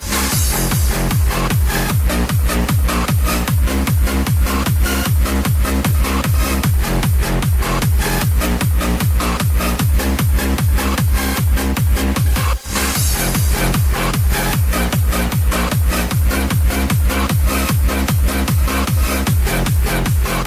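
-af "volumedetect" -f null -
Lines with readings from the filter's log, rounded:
mean_volume: -15.0 dB
max_volume: -6.5 dB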